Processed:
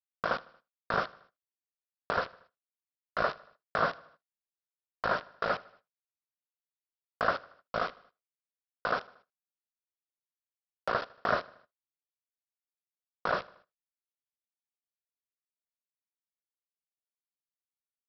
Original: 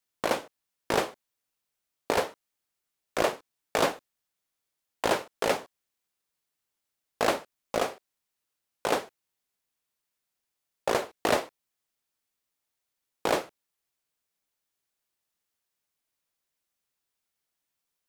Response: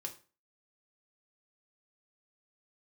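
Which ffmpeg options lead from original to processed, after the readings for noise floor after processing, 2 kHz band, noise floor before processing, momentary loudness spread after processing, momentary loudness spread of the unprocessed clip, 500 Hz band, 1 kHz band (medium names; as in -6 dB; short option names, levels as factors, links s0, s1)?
under -85 dBFS, 0.0 dB, -84 dBFS, 8 LU, 10 LU, -6.5 dB, -1.5 dB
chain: -filter_complex "[0:a]firequalizer=gain_entry='entry(180,0);entry(310,-16);entry(940,-5);entry(1400,7);entry(2300,-17);entry(4200,-28)':delay=0.05:min_phase=1,aresample=11025,acrusher=bits=5:mix=0:aa=0.000001,aresample=44100,equalizer=f=620:w=0.72:g=9.5,bandreject=f=850:w=5.3,asplit=2[s0][s1];[s1]aecho=0:1:77|154|231|308:0.0794|0.0413|0.0215|0.0112[s2];[s0][s2]amix=inputs=2:normalize=0,agate=range=0.126:threshold=0.002:ratio=16:detection=peak,volume=0.668"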